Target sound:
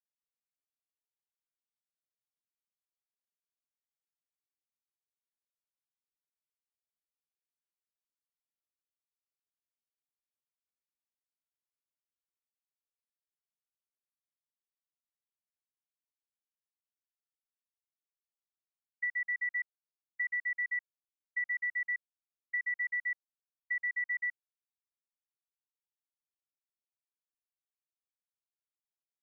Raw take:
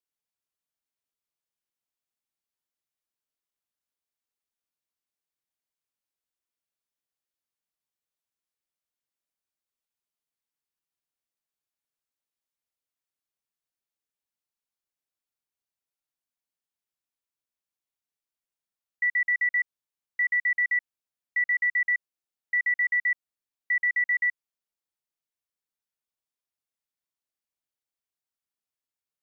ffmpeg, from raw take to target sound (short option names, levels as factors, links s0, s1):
-af "agate=range=0.0224:threshold=0.1:ratio=3:detection=peak,lowpass=f=1700:w=0.5412,lowpass=f=1700:w=1.3066,acompressor=threshold=0.01:ratio=6,volume=2.51"